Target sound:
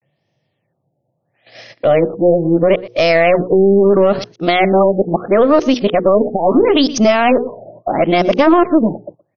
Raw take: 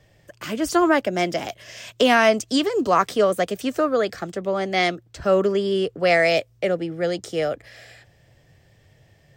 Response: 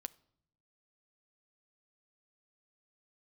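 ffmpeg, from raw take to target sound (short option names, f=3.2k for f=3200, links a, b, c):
-filter_complex "[0:a]areverse,bandreject=f=60:t=h:w=6,bandreject=f=120:t=h:w=6,bandreject=f=180:t=h:w=6,bandreject=f=240:t=h:w=6,bandreject=f=300:t=h:w=6,bandreject=f=360:t=h:w=6,bandreject=f=420:t=h:w=6,bandreject=f=480:t=h:w=6,agate=range=-23dB:threshold=-44dB:ratio=16:detection=peak,highpass=f=140:w=0.5412,highpass=f=140:w=1.3066,equalizer=f=1.6k:w=2.3:g=-9,bandreject=f=440:w=12,aeval=exprs='0.422*(cos(1*acos(clip(val(0)/0.422,-1,1)))-cos(1*PI/2))+0.0473*(cos(2*acos(clip(val(0)/0.422,-1,1)))-cos(2*PI/2))+0.00944*(cos(6*acos(clip(val(0)/0.422,-1,1)))-cos(6*PI/2))':c=same,highshelf=f=6.9k:g=-4.5,asplit=2[a][b];[b]aecho=0:1:119:0.0631[c];[a][c]amix=inputs=2:normalize=0,alimiter=level_in=17.5dB:limit=-1dB:release=50:level=0:latency=1,afftfilt=real='re*lt(b*sr/1024,870*pow(6600/870,0.5+0.5*sin(2*PI*0.75*pts/sr)))':imag='im*lt(b*sr/1024,870*pow(6600/870,0.5+0.5*sin(2*PI*0.75*pts/sr)))':win_size=1024:overlap=0.75,volume=-1.5dB"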